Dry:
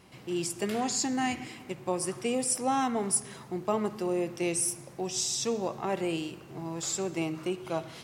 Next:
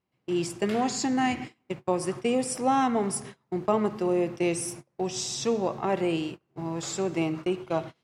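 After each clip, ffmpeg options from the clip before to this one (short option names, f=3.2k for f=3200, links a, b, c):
-af "agate=range=-30dB:threshold=-39dB:ratio=16:detection=peak,aemphasis=mode=reproduction:type=50kf,volume=4.5dB"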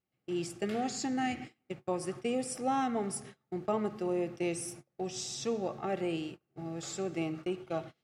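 -af "asuperstop=centerf=990:order=8:qfactor=6.5,volume=-7dB"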